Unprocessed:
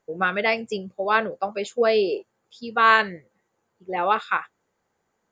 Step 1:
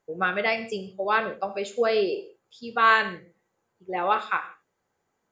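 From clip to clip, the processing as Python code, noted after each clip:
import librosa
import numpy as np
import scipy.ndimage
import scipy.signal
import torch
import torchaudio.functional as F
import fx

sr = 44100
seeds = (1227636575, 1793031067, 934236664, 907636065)

y = fx.rev_gated(x, sr, seeds[0], gate_ms=190, shape='falling', drr_db=8.0)
y = F.gain(torch.from_numpy(y), -3.0).numpy()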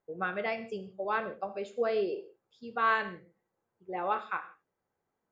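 y = fx.high_shelf(x, sr, hz=2500.0, db=-11.0)
y = F.gain(torch.from_numpy(y), -6.0).numpy()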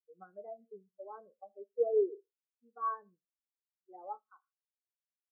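y = fx.env_lowpass_down(x, sr, base_hz=1000.0, full_db=-30.0)
y = fx.spectral_expand(y, sr, expansion=2.5)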